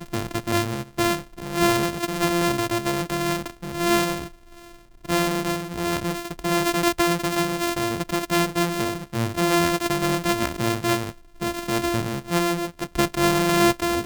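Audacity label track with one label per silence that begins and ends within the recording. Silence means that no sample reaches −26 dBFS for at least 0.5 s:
4.240000	5.090000	silence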